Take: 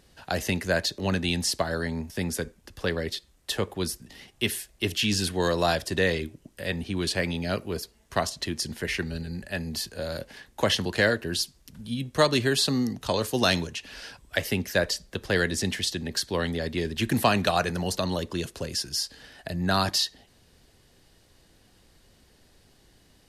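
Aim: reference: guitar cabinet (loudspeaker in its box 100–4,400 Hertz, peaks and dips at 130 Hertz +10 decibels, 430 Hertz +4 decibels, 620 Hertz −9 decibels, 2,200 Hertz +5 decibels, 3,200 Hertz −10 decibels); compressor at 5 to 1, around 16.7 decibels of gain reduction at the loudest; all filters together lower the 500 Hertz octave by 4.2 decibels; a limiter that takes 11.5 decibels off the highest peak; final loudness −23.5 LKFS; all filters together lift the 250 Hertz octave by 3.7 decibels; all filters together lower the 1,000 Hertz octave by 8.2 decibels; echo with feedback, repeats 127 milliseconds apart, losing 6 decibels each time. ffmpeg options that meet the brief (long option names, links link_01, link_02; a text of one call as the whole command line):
ffmpeg -i in.wav -af "equalizer=frequency=250:width_type=o:gain=5.5,equalizer=frequency=500:width_type=o:gain=-5,equalizer=frequency=1000:width_type=o:gain=-8,acompressor=threshold=-38dB:ratio=5,alimiter=level_in=6.5dB:limit=-24dB:level=0:latency=1,volume=-6.5dB,highpass=100,equalizer=frequency=130:width_type=q:width=4:gain=10,equalizer=frequency=430:width_type=q:width=4:gain=4,equalizer=frequency=620:width_type=q:width=4:gain=-9,equalizer=frequency=2200:width_type=q:width=4:gain=5,equalizer=frequency=3200:width_type=q:width=4:gain=-10,lowpass=frequency=4400:width=0.5412,lowpass=frequency=4400:width=1.3066,aecho=1:1:127|254|381|508|635|762:0.501|0.251|0.125|0.0626|0.0313|0.0157,volume=17.5dB" out.wav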